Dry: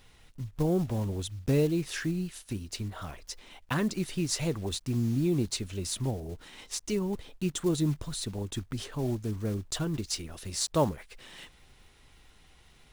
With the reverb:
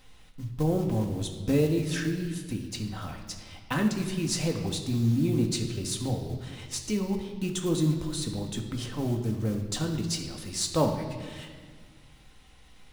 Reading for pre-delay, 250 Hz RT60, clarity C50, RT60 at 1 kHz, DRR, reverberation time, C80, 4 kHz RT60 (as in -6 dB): 4 ms, 2.3 s, 7.0 dB, 1.5 s, 2.5 dB, 1.7 s, 8.5 dB, 1.4 s